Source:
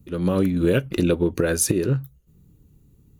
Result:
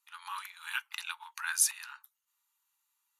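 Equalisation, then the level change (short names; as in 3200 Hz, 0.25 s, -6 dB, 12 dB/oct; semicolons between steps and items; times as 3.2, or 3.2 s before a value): brick-wall FIR band-pass 820–14000 Hz; -4.0 dB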